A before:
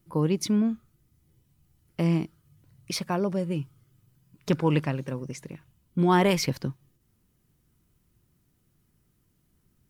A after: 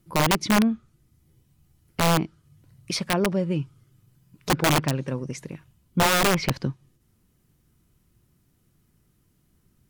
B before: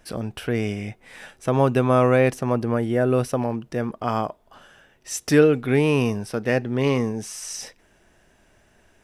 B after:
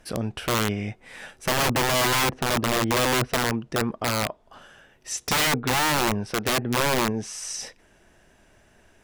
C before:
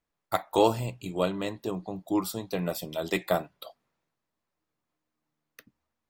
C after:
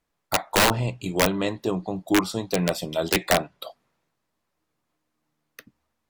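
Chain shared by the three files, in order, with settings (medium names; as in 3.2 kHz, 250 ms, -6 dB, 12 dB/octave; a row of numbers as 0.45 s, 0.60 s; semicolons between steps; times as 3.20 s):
low-pass that closes with the level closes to 1.1 kHz, closed at -15.5 dBFS; integer overflow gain 17.5 dB; normalise loudness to -24 LUFS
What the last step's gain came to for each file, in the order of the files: +3.5 dB, +1.0 dB, +6.5 dB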